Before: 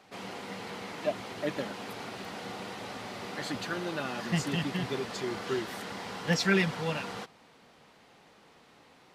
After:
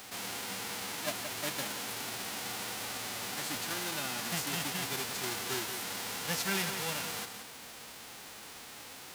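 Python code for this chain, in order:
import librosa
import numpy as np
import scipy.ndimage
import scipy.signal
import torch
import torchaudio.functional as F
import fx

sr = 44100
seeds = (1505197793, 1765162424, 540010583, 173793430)

y = fx.envelope_flatten(x, sr, power=0.3)
y = fx.peak_eq(y, sr, hz=170.0, db=-6.0, octaves=0.76)
y = y + 10.0 ** (-14.0 / 20.0) * np.pad(y, (int(175 * sr / 1000.0), 0))[:len(y)]
y = fx.env_flatten(y, sr, amount_pct=50)
y = y * librosa.db_to_amplitude(-7.0)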